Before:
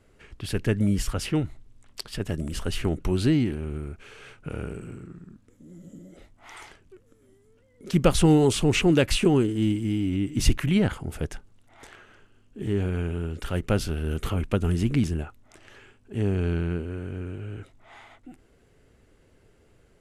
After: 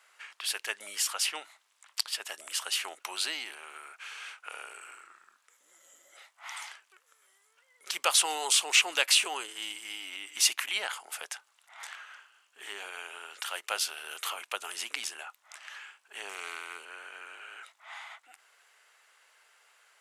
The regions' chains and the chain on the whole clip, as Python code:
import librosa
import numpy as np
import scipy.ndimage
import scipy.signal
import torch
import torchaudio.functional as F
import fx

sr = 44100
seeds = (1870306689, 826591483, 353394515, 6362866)

y = fx.chain(x, sr, fx.high_shelf(hz=6500.0, db=10.5),
    fx.doppler_dist(depth_ms=0.16), at=(16.29, 16.85))
y = scipy.signal.sosfilt(scipy.signal.butter(4, 920.0, 'highpass', fs=sr, output='sos'), y)
y = fx.dynamic_eq(y, sr, hz=1500.0, q=0.87, threshold_db=-50.0, ratio=4.0, max_db=-7)
y = y * librosa.db_to_amplitude(7.0)